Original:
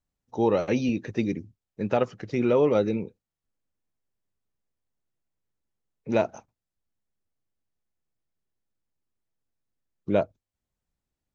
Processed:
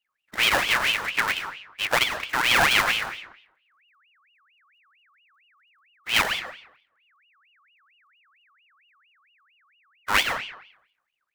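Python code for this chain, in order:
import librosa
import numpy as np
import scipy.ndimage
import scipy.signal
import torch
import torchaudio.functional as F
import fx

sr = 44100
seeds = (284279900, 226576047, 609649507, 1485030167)

y = fx.halfwave_hold(x, sr)
y = fx.rev_freeverb(y, sr, rt60_s=0.74, hf_ratio=0.7, predelay_ms=60, drr_db=7.0)
y = fx.ring_lfo(y, sr, carrier_hz=2000.0, swing_pct=45, hz=4.4)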